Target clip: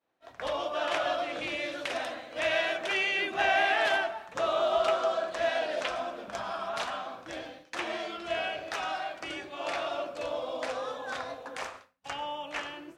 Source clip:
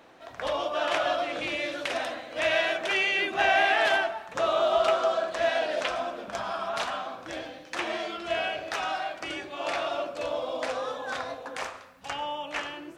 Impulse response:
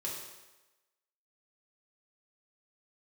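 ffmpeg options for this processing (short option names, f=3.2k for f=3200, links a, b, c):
-af "agate=range=-33dB:threshold=-40dB:ratio=3:detection=peak,volume=-3dB"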